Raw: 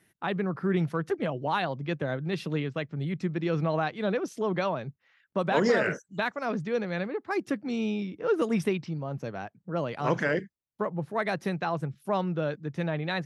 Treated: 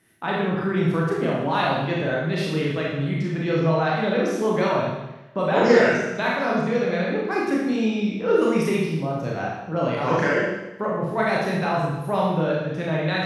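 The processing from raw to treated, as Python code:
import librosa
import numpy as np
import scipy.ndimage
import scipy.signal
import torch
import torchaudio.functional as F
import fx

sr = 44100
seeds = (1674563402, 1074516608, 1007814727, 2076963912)

p1 = fx.high_shelf(x, sr, hz=5300.0, db=-6.0, at=(4.67, 5.72))
p2 = fx.level_steps(p1, sr, step_db=21)
p3 = p1 + F.gain(torch.from_numpy(p2), 1.0).numpy()
y = fx.rev_schroeder(p3, sr, rt60_s=1.0, comb_ms=25, drr_db=-4.5)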